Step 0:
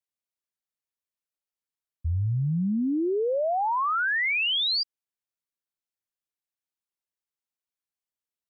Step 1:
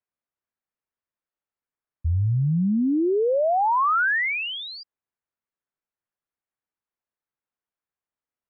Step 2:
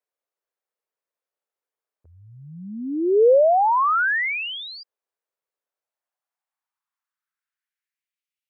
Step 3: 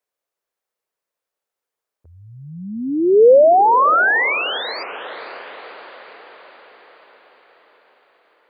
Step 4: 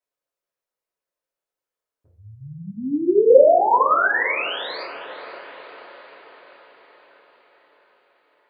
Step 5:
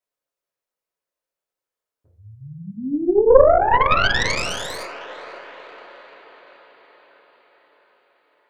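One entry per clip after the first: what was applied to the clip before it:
Chebyshev low-pass filter 1,600 Hz, order 2; level +5 dB
high-pass filter sweep 470 Hz → 2,600 Hz, 0:05.55–0:08.30
feedback delay with all-pass diffusion 515 ms, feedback 58%, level −15.5 dB; level +5.5 dB
convolution reverb RT60 0.60 s, pre-delay 3 ms, DRR −5 dB; level −10.5 dB
stylus tracing distortion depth 0.22 ms

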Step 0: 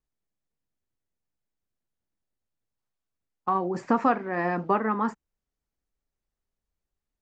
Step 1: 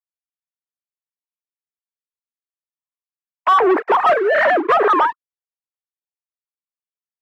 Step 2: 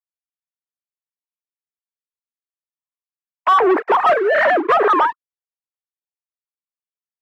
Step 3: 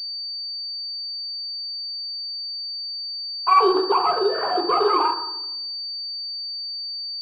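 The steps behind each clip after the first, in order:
three sine waves on the formant tracks; leveller curve on the samples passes 5; three-way crossover with the lows and the highs turned down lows −22 dB, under 250 Hz, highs −23 dB, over 2,400 Hz; level +2 dB
no processing that can be heard
phaser with its sweep stopped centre 400 Hz, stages 8; on a send at −1 dB: convolution reverb RT60 0.85 s, pre-delay 3 ms; on the sum: switching amplifier with a slow clock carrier 4,600 Hz; level −5.5 dB

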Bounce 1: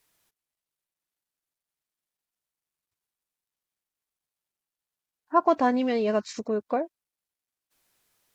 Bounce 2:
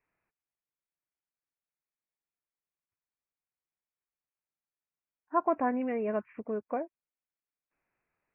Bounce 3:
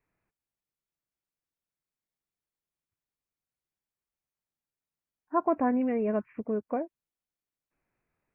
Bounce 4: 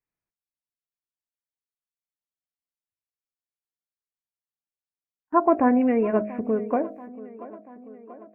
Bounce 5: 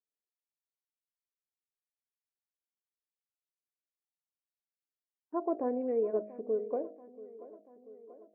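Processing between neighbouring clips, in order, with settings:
Butterworth low-pass 2,600 Hz 96 dB per octave; level −6.5 dB
low-shelf EQ 400 Hz +9.5 dB; level −1.5 dB
hum removal 52.64 Hz, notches 14; noise gate −56 dBFS, range −20 dB; tape delay 685 ms, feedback 69%, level −17 dB, low-pass 2,400 Hz; level +7.5 dB
resonant band-pass 450 Hz, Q 3; level −5 dB

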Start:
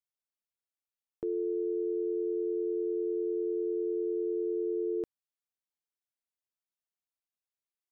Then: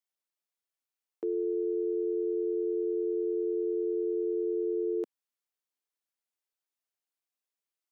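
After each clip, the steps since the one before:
high-pass filter 250 Hz 24 dB per octave
level +1.5 dB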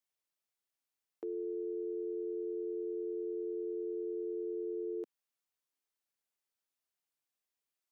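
brickwall limiter −32.5 dBFS, peak gain reduction 9 dB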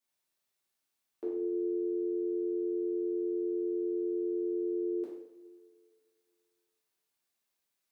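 coupled-rooms reverb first 0.67 s, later 2.3 s, from −18 dB, DRR −7 dB
level −1.5 dB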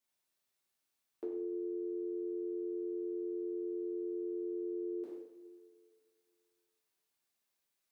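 downward compressor, threshold −35 dBFS, peak gain reduction 5.5 dB
level −1 dB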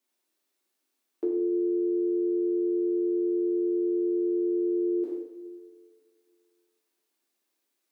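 high-pass with resonance 300 Hz, resonance Q 3.6
level +4 dB

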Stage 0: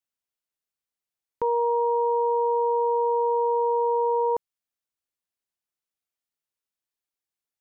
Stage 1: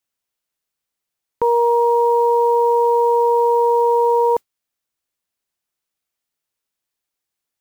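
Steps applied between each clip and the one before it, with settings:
noise that follows the level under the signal 34 dB
level +8 dB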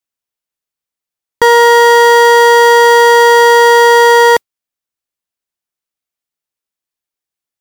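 leveller curve on the samples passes 5
level +6 dB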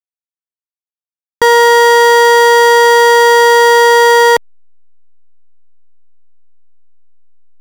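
slack as between gear wheels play −16 dBFS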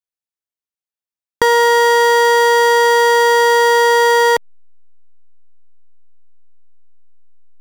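downward compressor, threshold −11 dBFS, peak gain reduction 5 dB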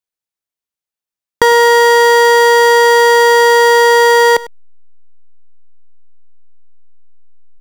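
single-tap delay 100 ms −19 dB
level +3.5 dB

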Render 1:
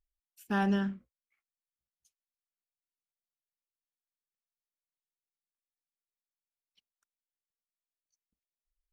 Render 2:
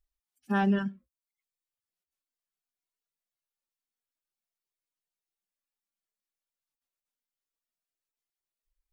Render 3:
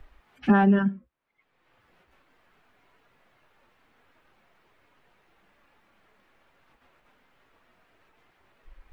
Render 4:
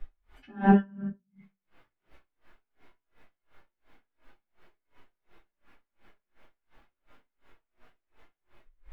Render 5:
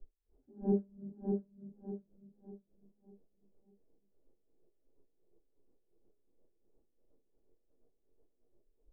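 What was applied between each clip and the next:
harmonic-percussive split with one part muted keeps harmonic; reverb reduction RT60 0.62 s; brickwall limiter −24 dBFS, peak gain reduction 3.5 dB; level +6 dB
multiband upward and downward compressor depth 100%; level +8 dB
transient designer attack +5 dB, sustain 0 dB; convolution reverb RT60 0.60 s, pre-delay 3 ms, DRR −10 dB; tremolo with a sine in dB 2.8 Hz, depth 34 dB; level −8.5 dB
transistor ladder low-pass 510 Hz, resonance 55%; on a send: repeating echo 598 ms, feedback 37%, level −4 dB; on the sum: level −3.5 dB

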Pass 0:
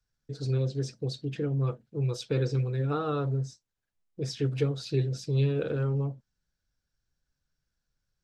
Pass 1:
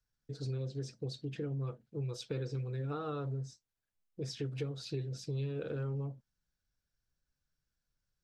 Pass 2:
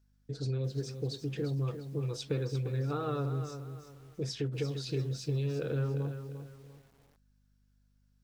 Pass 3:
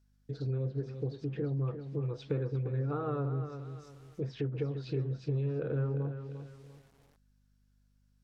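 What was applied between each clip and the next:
downward compressor 3 to 1, threshold −31 dBFS, peak gain reduction 8 dB; level −4.5 dB
mains hum 50 Hz, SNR 33 dB; feedback echo at a low word length 348 ms, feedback 35%, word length 10 bits, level −9 dB; level +4 dB
treble cut that deepens with the level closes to 1,600 Hz, closed at −32 dBFS

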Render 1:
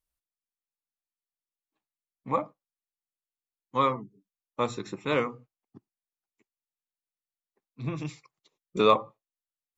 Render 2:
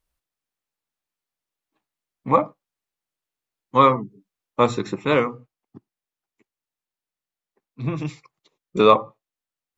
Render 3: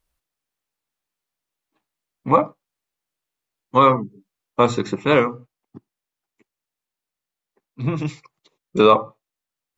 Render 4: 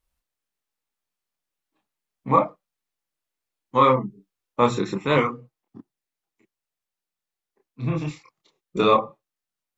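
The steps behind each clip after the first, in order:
high-shelf EQ 4,200 Hz −7 dB; speech leveller 0.5 s; level +7.5 dB
boost into a limiter +4.5 dB; level −1.5 dB
multi-voice chorus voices 4, 0.65 Hz, delay 28 ms, depth 3.2 ms

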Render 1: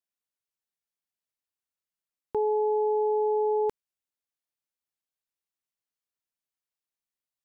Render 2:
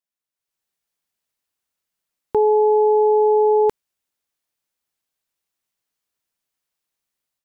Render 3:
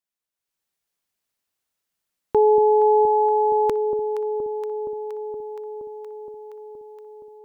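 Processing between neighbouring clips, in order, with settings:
automatic gain control gain up to 10 dB
delay that swaps between a low-pass and a high-pass 235 ms, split 810 Hz, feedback 85%, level −7.5 dB

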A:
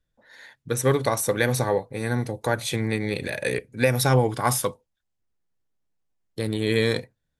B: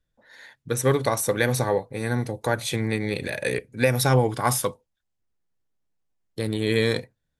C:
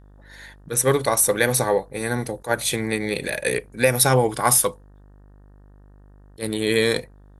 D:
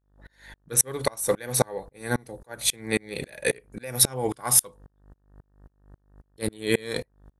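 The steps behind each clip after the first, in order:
no processing that can be heard
graphic EQ with 15 bands 100 Hz −10 dB, 250 Hz −3 dB, 10,000 Hz +8 dB; hum with harmonics 50 Hz, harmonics 37, −52 dBFS −7 dB per octave; level that may rise only so fast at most 340 dB per second; level +3.5 dB
tremolo with a ramp in dB swelling 3.7 Hz, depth 33 dB; level +3.5 dB

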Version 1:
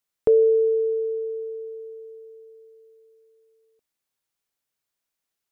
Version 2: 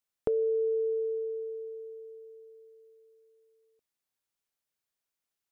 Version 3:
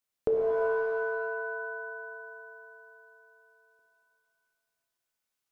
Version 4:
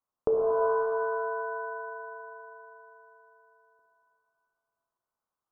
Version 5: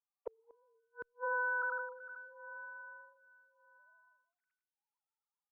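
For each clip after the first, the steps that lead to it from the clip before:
downward compressor, threshold −21 dBFS, peak gain reduction 7.5 dB; level −5 dB
reverb with rising layers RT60 1.6 s, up +7 semitones, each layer −2 dB, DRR 2 dB
high shelf with overshoot 1,600 Hz −13 dB, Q 3
three sine waves on the formant tracks; gate with flip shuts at −23 dBFS, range −42 dB; phaser with staggered stages 0.83 Hz

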